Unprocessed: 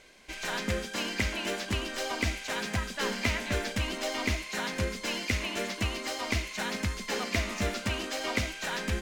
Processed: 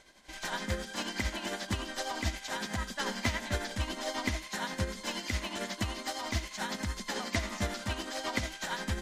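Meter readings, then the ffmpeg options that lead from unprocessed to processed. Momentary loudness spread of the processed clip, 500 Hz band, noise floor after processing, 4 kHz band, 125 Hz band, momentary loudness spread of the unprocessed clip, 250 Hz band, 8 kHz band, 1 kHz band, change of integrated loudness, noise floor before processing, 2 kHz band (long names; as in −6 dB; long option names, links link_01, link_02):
3 LU, −4.5 dB, −48 dBFS, −3.0 dB, −2.5 dB, 3 LU, −3.0 dB, −2.0 dB, −1.0 dB, −3.5 dB, −42 dBFS, −4.0 dB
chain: -af "superequalizer=7b=0.562:9b=1.41:12b=0.501,tremolo=f=11:d=0.52" -ar 44100 -c:a libmp3lame -b:a 56k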